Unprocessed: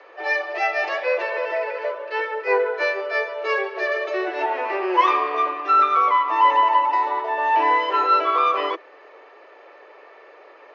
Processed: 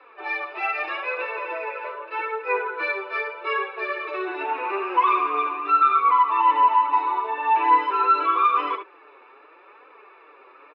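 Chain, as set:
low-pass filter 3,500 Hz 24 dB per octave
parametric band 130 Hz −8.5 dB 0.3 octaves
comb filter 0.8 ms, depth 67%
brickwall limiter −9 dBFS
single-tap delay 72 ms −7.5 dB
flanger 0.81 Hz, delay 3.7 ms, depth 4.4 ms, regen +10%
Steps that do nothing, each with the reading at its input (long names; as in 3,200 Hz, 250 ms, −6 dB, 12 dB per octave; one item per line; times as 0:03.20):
parametric band 130 Hz: nothing at its input below 290 Hz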